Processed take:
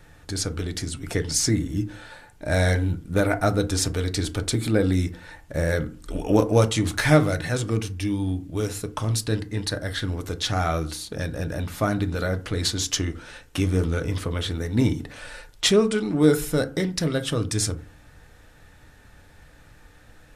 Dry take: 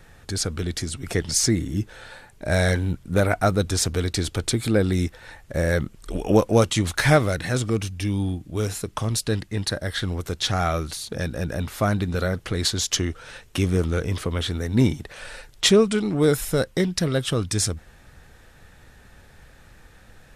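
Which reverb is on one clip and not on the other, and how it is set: FDN reverb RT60 0.38 s, low-frequency decay 1.35×, high-frequency decay 0.45×, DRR 8 dB; trim -2 dB

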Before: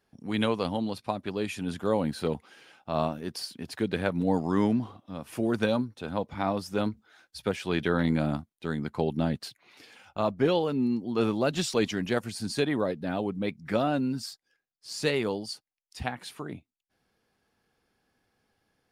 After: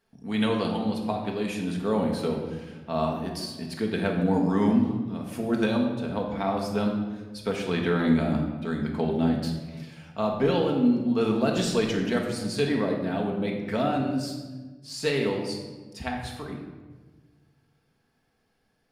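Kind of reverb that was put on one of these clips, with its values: simulated room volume 1000 m³, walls mixed, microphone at 1.6 m; trim -1.5 dB

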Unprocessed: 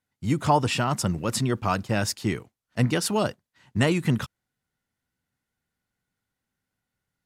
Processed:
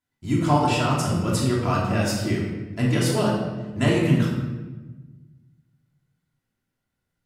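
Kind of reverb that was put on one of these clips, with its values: simulated room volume 830 m³, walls mixed, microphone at 3 m; trim -5 dB

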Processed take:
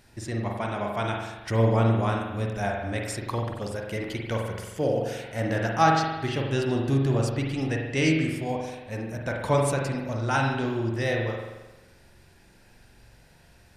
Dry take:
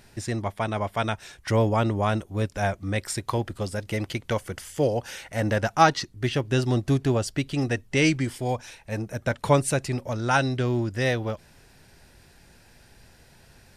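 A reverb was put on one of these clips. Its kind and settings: spring tank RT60 1.1 s, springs 44 ms, chirp 35 ms, DRR 0 dB; trim -4.5 dB

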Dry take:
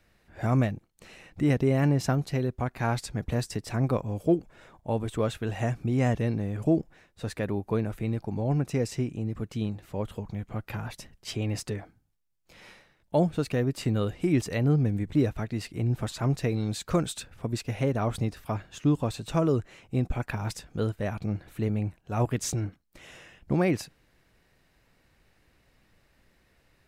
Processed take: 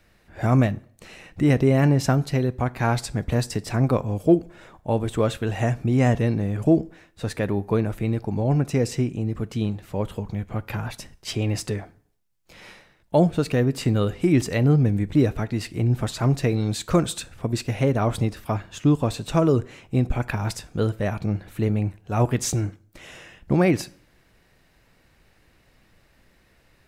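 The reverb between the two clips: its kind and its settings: plate-style reverb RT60 0.55 s, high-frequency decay 0.8×, DRR 17.5 dB; trim +5.5 dB

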